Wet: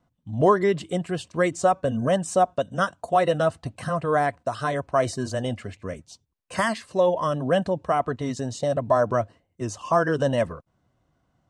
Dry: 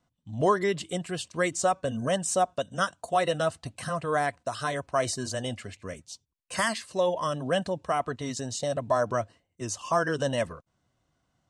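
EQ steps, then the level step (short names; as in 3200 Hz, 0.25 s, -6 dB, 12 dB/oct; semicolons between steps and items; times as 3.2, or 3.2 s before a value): high shelf 2200 Hz -11 dB; +6.0 dB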